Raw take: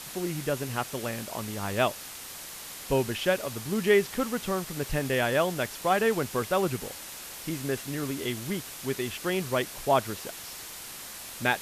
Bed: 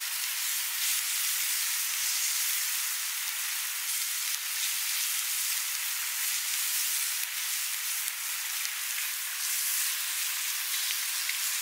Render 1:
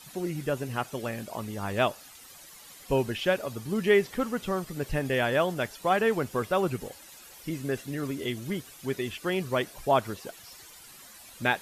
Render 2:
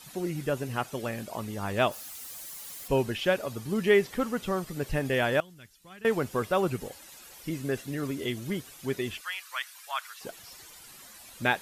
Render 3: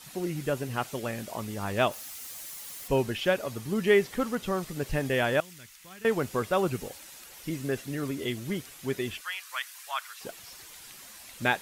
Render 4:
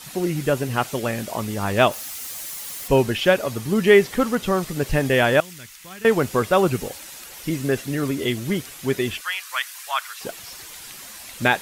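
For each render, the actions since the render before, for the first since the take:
denoiser 12 dB, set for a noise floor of -42 dBFS
1.91–2.88 switching spikes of -40.5 dBFS; 5.4–6.05 passive tone stack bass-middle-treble 6-0-2; 9.21–10.21 inverse Chebyshev high-pass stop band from 200 Hz, stop band 80 dB
add bed -21.5 dB
gain +8.5 dB; limiter -3 dBFS, peak gain reduction 2 dB

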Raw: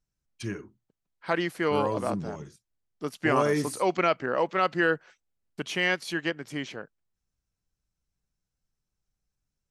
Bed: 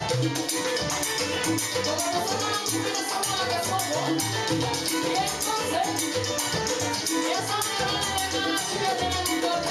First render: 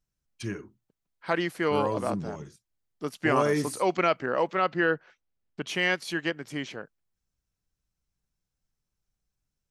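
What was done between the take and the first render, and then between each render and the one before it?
4.55–5.67 air absorption 130 m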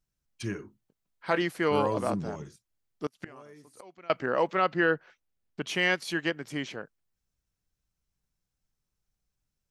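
0.58–1.42 doubler 20 ms -11 dB; 3.06–4.1 flipped gate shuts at -24 dBFS, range -26 dB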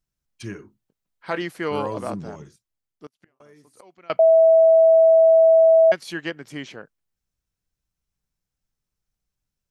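2.44–3.4 fade out; 4.19–5.92 bleep 651 Hz -10 dBFS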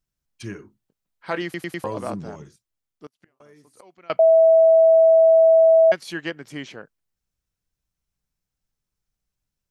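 1.44 stutter in place 0.10 s, 4 plays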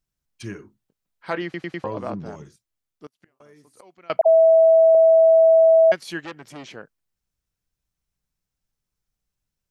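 1.34–2.26 air absorption 150 m; 4.21–4.95 dispersion lows, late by 69 ms, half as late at 900 Hz; 6.25–6.68 core saturation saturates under 2600 Hz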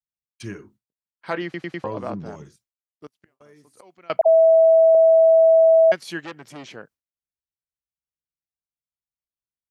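gate with hold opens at -47 dBFS; HPF 47 Hz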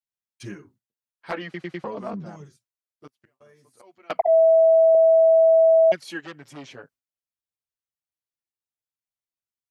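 envelope flanger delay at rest 9 ms, full sweep at -11 dBFS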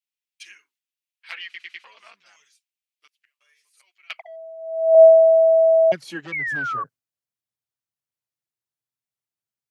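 high-pass sweep 2500 Hz -> 120 Hz, 4.57–5.56; 6.32–6.84 painted sound fall 1100–2300 Hz -26 dBFS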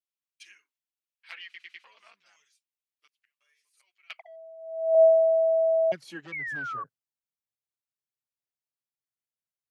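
gain -8 dB

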